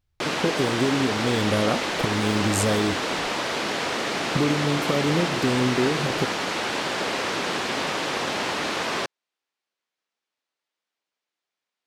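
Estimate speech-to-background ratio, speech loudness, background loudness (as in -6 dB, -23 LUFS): 0.5 dB, -25.5 LUFS, -26.0 LUFS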